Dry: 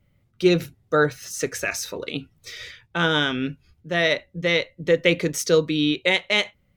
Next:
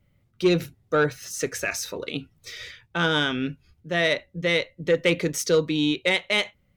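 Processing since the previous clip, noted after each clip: saturation -9.5 dBFS, distortion -21 dB; trim -1 dB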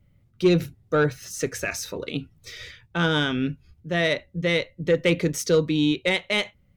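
bass shelf 270 Hz +7.5 dB; trim -1.5 dB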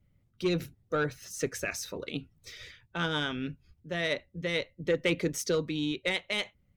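harmonic-percussive split harmonic -6 dB; trim -4.5 dB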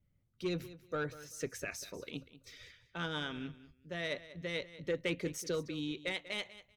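feedback delay 192 ms, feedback 20%, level -16 dB; trim -7.5 dB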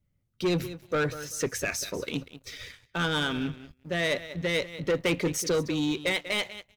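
waveshaping leveller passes 2; trim +5 dB

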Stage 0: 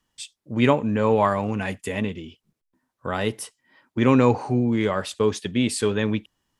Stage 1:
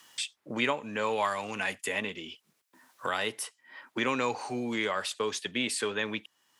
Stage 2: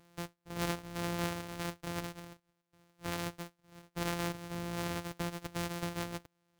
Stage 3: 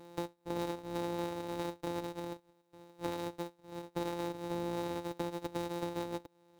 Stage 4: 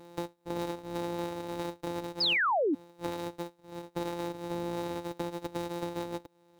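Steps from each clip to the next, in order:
high-pass 1.4 kHz 6 dB/octave; three bands compressed up and down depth 70%
sorted samples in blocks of 256 samples; trim -6.5 dB
compression 6:1, threshold -46 dBFS, peak gain reduction 15.5 dB; small resonant body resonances 330/510/850/3800 Hz, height 12 dB, ringing for 25 ms; trim +3.5 dB
painted sound fall, 2.20–2.75 s, 260–5300 Hz -29 dBFS; trim +2 dB

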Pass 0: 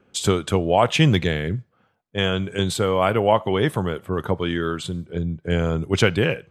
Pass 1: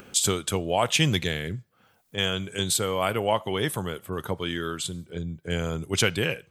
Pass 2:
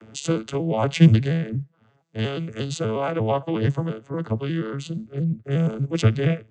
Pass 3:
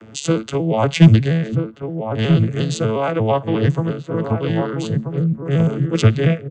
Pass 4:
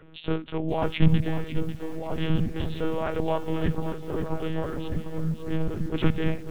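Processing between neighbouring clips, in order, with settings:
pre-emphasis filter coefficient 0.8; upward compressor, threshold -41 dBFS; trim +6.5 dB
vocoder on a broken chord major triad, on A2, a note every 118 ms; trim +6 dB
overload inside the chain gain 7 dB; echo from a far wall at 220 m, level -6 dB; trim +5 dB
monotone LPC vocoder at 8 kHz 160 Hz; bit-crushed delay 546 ms, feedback 35%, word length 6-bit, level -10.5 dB; trim -8.5 dB

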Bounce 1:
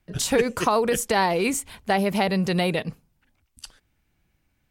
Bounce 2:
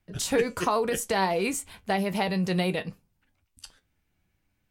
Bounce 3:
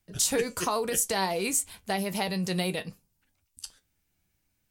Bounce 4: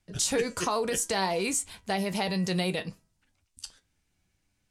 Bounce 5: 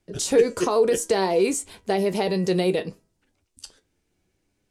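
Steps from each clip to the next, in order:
flange 0.65 Hz, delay 9.8 ms, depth 1.7 ms, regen +63%
tone controls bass 0 dB, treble +11 dB; trim -3.5 dB
low-pass 8.5 kHz 12 dB/octave; de-hum 323.5 Hz, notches 6; in parallel at -3 dB: peak limiter -25 dBFS, peak gain reduction 10.5 dB; on the sum: trim -2.5 dB
peaking EQ 400 Hz +13 dB 1.2 oct

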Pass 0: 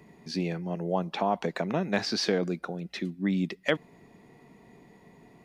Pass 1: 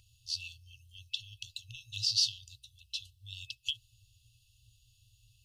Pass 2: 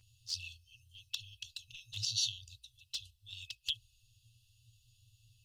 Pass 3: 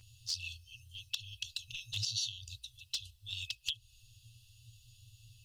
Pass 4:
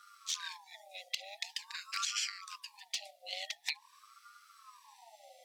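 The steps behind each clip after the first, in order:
FFT band-reject 120–2600 Hz; trim +3.5 dB
touch-sensitive flanger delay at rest 10.2 ms, full sweep at -31 dBFS; trim +1 dB
compression 4:1, threshold -42 dBFS, peak gain reduction 12 dB; trim +7.5 dB
ring modulator with a swept carrier 970 Hz, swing 35%, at 0.46 Hz; trim +3 dB

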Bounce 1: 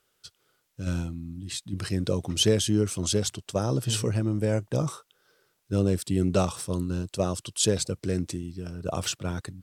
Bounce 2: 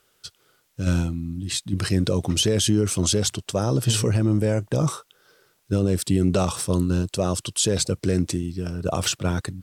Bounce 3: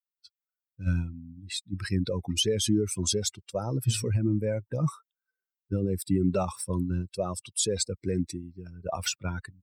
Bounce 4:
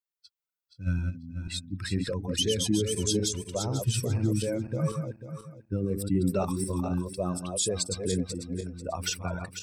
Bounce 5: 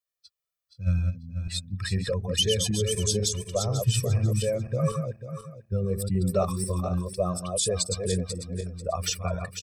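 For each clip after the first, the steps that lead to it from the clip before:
peak limiter -18.5 dBFS, peak gain reduction 8.5 dB; trim +7.5 dB
expander on every frequency bin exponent 2; trim -1.5 dB
backward echo that repeats 246 ms, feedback 48%, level -5 dB; trim -1.5 dB
comb 1.7 ms, depth 94%

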